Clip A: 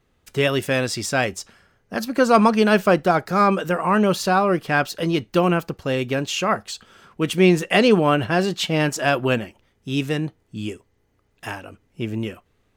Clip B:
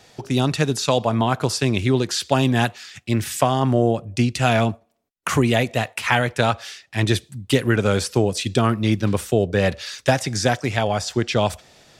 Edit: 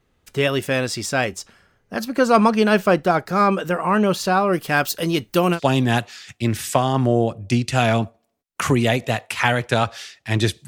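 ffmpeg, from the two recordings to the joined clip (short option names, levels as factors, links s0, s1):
-filter_complex "[0:a]asettb=1/sr,asplit=3[s0][s1][s2];[s0]atrim=end=4.534[s3];[s1]atrim=start=4.53:end=5.6,asetpts=PTS-STARTPTS,afade=t=in:d=0.004:c=qsin,afade=t=out:st=1.066:d=0.004:c=qsin,aemphasis=mode=production:type=50kf[s4];[s2]atrim=start=5.596[s5];[s3][s4]acrossfade=d=0.004:c1=hsin:c2=qsin[s6];[s6][s5]acrossfade=d=0.004:c1=qsin:c2=hsin,apad=whole_dur=10.67,atrim=end=10.67,atrim=end=5.6,asetpts=PTS-STARTPTS[s7];[1:a]atrim=start=2.19:end=7.34,asetpts=PTS-STARTPTS[s8];[s7][s8]acrossfade=d=0.08:c1=tri:c2=tri"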